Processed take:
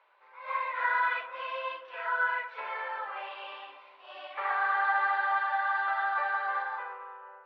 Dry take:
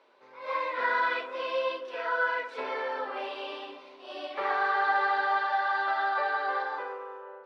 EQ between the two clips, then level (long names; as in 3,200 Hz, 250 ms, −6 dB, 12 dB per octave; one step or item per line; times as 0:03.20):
flat-topped band-pass 1,500 Hz, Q 0.72
0.0 dB